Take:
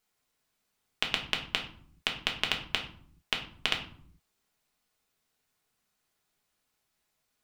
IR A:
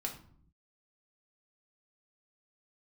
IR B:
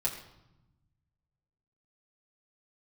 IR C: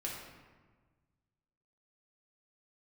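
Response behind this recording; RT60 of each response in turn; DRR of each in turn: A; 0.60 s, 0.90 s, 1.4 s; 0.5 dB, -6.0 dB, -4.0 dB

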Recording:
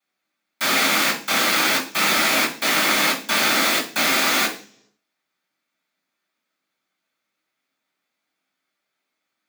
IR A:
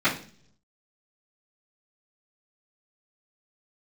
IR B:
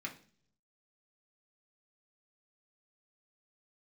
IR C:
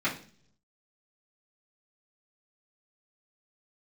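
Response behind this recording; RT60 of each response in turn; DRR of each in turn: A; 0.45 s, 0.45 s, 0.45 s; -17.5 dB, -1.5 dB, -11.0 dB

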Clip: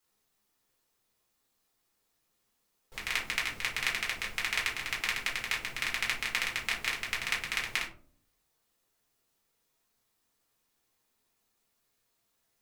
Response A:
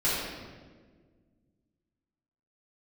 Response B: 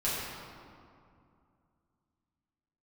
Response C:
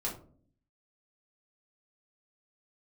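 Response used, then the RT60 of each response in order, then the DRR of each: C; 1.6 s, 2.4 s, 0.50 s; -10.5 dB, -10.0 dB, -4.0 dB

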